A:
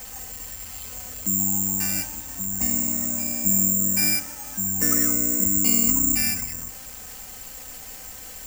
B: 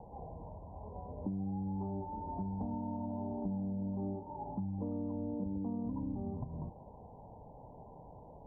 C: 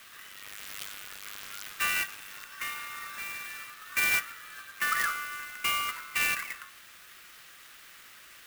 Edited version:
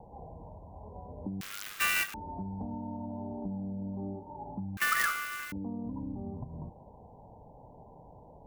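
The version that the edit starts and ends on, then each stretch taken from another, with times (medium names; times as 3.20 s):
B
1.41–2.14 s: from C
4.77–5.52 s: from C
not used: A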